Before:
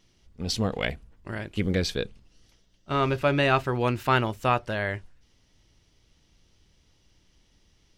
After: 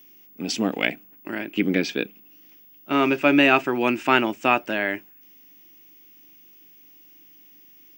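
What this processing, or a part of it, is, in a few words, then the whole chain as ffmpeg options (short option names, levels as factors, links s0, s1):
old television with a line whistle: -filter_complex "[0:a]asettb=1/sr,asplit=3[s0][s1][s2];[s0]atrim=end=1.424[s3];[s1]atrim=start=1.42:end=2.93,asetpts=PTS-STARTPTS,afade=t=in:d=0.004:c=qsin,afade=t=out:st=1.506:d=0.004:c=qsin,lowpass=5200[s4];[s2]atrim=start=2.926[s5];[s3][s4]acrossfade=d=0.004:c1=hsin:c2=qsin[s6];[s6][s5]acrossfade=d=0.004:c1=qsin:c2=hsin,highpass=f=200:w=0.5412,highpass=f=200:w=1.3066,equalizer=f=300:t=q:w=4:g=9,equalizer=f=490:t=q:w=4:g=-6,equalizer=f=1100:t=q:w=4:g=-4,equalizer=f=2500:t=q:w=4:g=8,equalizer=f=4100:t=q:w=4:g=-9,lowpass=f=8300:w=0.5412,lowpass=f=8300:w=1.3066,aeval=exprs='val(0)+0.00224*sin(2*PI*15625*n/s)':c=same,volume=1.68"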